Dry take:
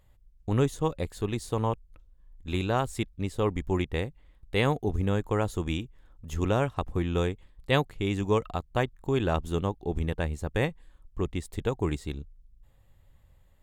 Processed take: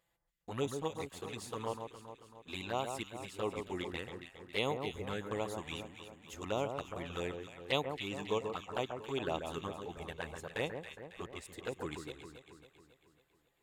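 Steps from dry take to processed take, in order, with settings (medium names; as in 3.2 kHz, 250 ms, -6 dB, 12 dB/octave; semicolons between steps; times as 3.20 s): high-pass 660 Hz 6 dB/octave; touch-sensitive flanger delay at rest 6 ms, full sweep at -27.5 dBFS; echo whose repeats swap between lows and highs 137 ms, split 1.7 kHz, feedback 72%, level -6 dB; trim -2.5 dB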